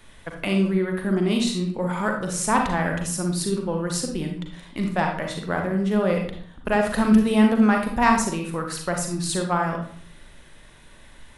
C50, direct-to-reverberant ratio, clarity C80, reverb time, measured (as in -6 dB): 4.5 dB, 2.0 dB, 9.0 dB, 0.55 s